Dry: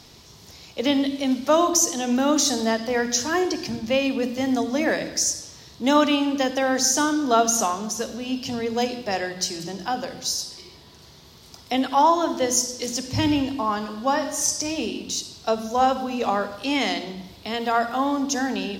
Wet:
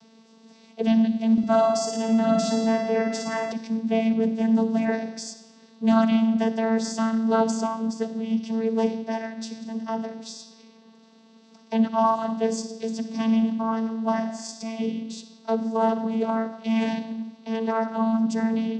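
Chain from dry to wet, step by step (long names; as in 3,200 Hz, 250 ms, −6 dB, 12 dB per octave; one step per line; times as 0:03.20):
channel vocoder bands 16, saw 224 Hz
0:01.32–0:03.52: flutter between parallel walls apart 9.7 metres, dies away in 0.77 s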